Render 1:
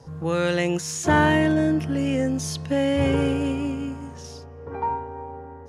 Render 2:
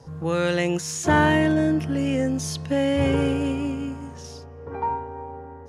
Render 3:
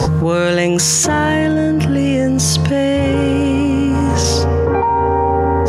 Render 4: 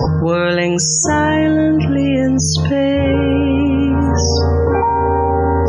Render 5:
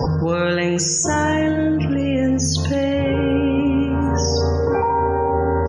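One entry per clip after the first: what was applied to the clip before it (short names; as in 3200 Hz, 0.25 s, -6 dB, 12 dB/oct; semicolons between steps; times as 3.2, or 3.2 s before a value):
nothing audible
fast leveller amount 100%; gain +2 dB
loudest bins only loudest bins 64; two-slope reverb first 0.39 s, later 1.9 s, from -26 dB, DRR 12.5 dB
flange 0.6 Hz, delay 3.8 ms, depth 6.9 ms, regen -88%; feedback echo 92 ms, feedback 49%, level -13 dB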